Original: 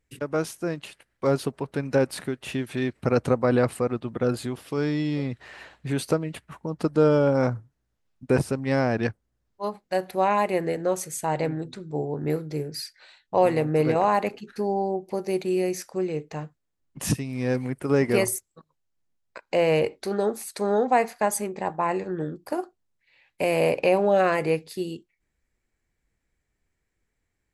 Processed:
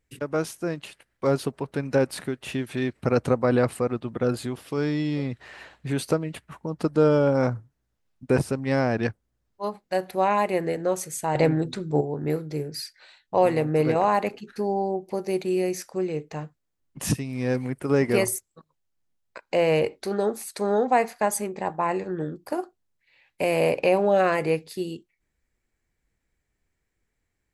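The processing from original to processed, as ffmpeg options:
-filter_complex "[0:a]asettb=1/sr,asplit=3[s0][s1][s2];[s0]atrim=end=11.354[s3];[s1]atrim=start=11.35:end=12.01,asetpts=PTS-STARTPTS,afade=t=in:d=0.004:c=qsin,afade=t=out:st=0.656:d=0.004:c=qsin,acontrast=70[s4];[s2]atrim=start=12.006[s5];[s3][s4]acrossfade=d=0.004:c1=hsin:c2=qsin[s6];[s6][s5]acrossfade=d=0.004:c1=qsin:c2=hsin"

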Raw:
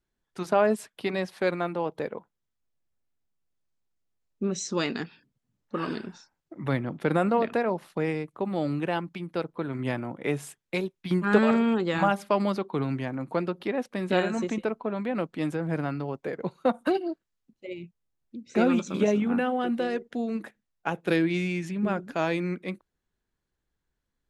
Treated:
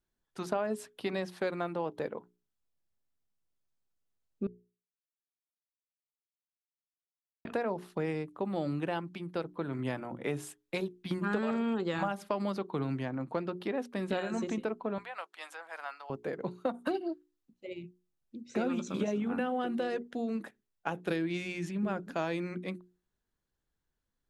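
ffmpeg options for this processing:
-filter_complex "[0:a]asettb=1/sr,asplit=3[s0][s1][s2];[s0]atrim=end=13.034[s3];[s1]atrim=start=13.03:end=13.51,asetpts=PTS-STARTPTS,afade=t=in:d=0.004:c=qsin,afade=t=out:st=0.476:d=0.004:c=qsin,adynamicsmooth=sensitivity=7:basefreq=7600[s4];[s2]atrim=start=13.506[s5];[s3][s4]acrossfade=d=0.004:c1=hsin:c2=qsin[s6];[s6][s5]acrossfade=d=0.004:c1=qsin:c2=hsin,asettb=1/sr,asplit=3[s7][s8][s9];[s7]atrim=end=14.984[s10];[s8]atrim=start=14.98:end=16.1,asetpts=PTS-STARTPTS,afade=t=in:d=0.004:c=qsin,afade=t=out:st=1.116:d=0.004:c=qsin,highpass=f=790:w=0.5412,highpass=f=790:w=1.3066[s11];[s9]atrim=start=16.096[s12];[s10][s11]acrossfade=d=0.004:c1=hsin:c2=qsin[s13];[s13][s12]acrossfade=d=0.004:c1=qsin:c2=hsin,asplit=3[s14][s15][s16];[s14]atrim=end=4.47,asetpts=PTS-STARTPTS,afade=t=out:st=4.466:d=0.004:c=hsin[s17];[s15]atrim=start=4.47:end=7.45,asetpts=PTS-STARTPTS,volume=0[s18];[s16]atrim=start=7.45,asetpts=PTS-STARTPTS,afade=t=in:d=0.004:c=hsin[s19];[s17][s18][s19]concat=n=3:v=0:a=1,equalizer=f=2200:t=o:w=0.44:g=-3,bandreject=f=60:t=h:w=6,bandreject=f=120:t=h:w=6,bandreject=f=180:t=h:w=6,bandreject=f=240:t=h:w=6,bandreject=f=300:t=h:w=6,bandreject=f=360:t=h:w=6,bandreject=f=420:t=h:w=6,acompressor=threshold=0.0562:ratio=6,volume=0.708"

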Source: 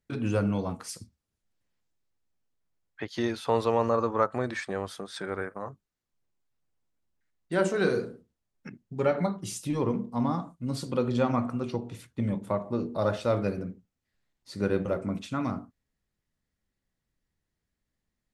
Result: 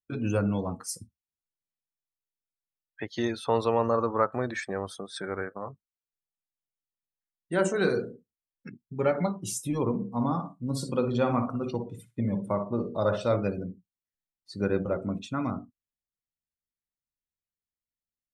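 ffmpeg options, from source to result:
-filter_complex "[0:a]asettb=1/sr,asplit=3[s0][s1][s2];[s0]atrim=end=9.934[s3];[s1]atrim=start=9.93:end=13.36,asetpts=PTS-STARTPTS,afade=t=in:d=0.004:c=qsin,afade=t=out:st=3.426:d=0.004:c=qsin,aecho=1:1:60|120|180:0.398|0.0876|0.0193,atrim=end_sample=151263[s4];[s2]atrim=start=13.356[s5];[s3][s4]acrossfade=d=0.004:c1=hsin:c2=qsin[s6];[s6][s5]acrossfade=d=0.004:c1=qsin:c2=hsin,highshelf=f=6600:g=8.5,afftdn=nr=21:nf=-44,bandreject=f=4700:w=14"

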